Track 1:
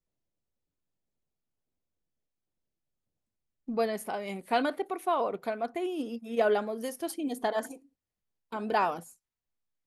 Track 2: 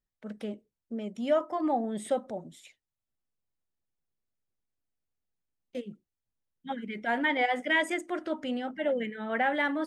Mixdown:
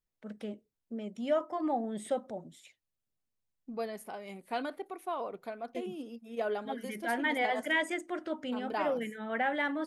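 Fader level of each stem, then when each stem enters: -8.0 dB, -3.5 dB; 0.00 s, 0.00 s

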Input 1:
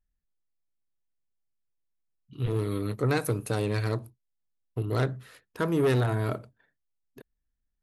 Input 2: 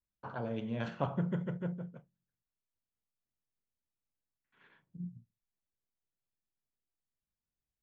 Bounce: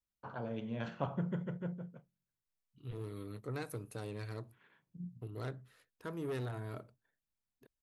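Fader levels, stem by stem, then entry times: -15.0 dB, -3.0 dB; 0.45 s, 0.00 s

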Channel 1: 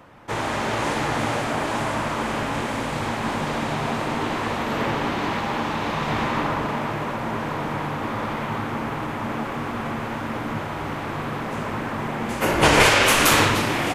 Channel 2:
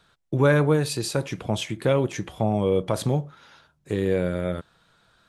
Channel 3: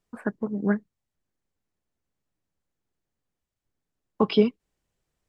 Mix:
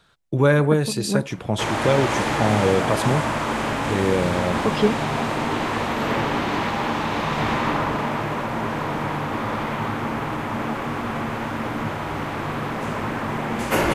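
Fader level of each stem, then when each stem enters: +1.5 dB, +2.0 dB, 0.0 dB; 1.30 s, 0.00 s, 0.45 s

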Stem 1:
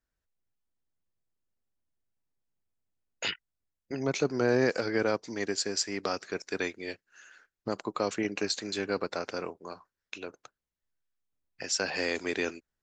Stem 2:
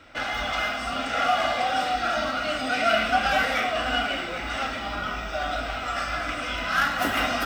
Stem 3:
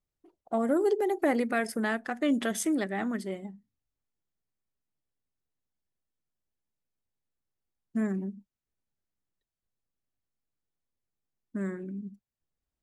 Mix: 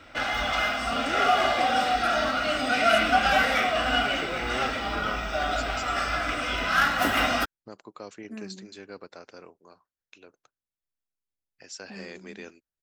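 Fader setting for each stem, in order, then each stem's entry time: -11.5 dB, +1.0 dB, -11.0 dB; 0.00 s, 0.00 s, 0.35 s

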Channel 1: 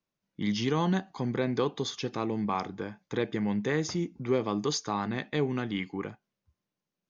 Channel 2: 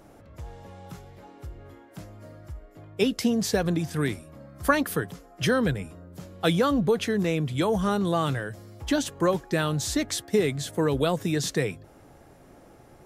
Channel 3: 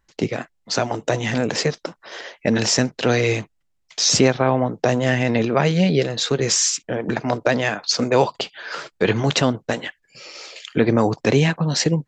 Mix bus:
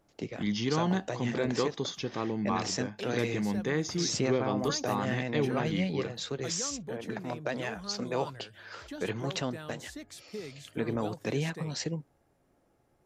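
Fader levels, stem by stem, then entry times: -1.5 dB, -18.0 dB, -15.0 dB; 0.00 s, 0.00 s, 0.00 s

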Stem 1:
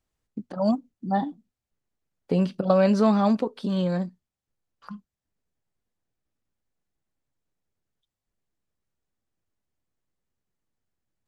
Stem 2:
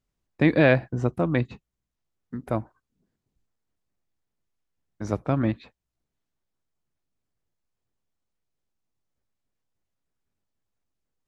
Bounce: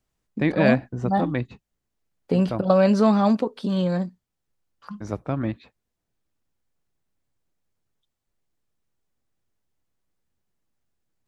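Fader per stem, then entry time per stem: +2.0 dB, -2.5 dB; 0.00 s, 0.00 s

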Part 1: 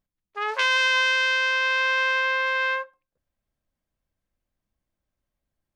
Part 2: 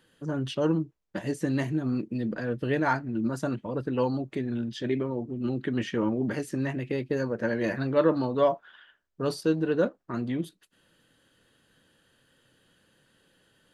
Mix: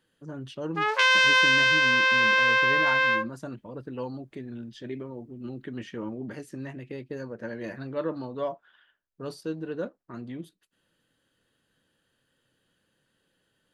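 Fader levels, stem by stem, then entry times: +1.5 dB, -8.0 dB; 0.40 s, 0.00 s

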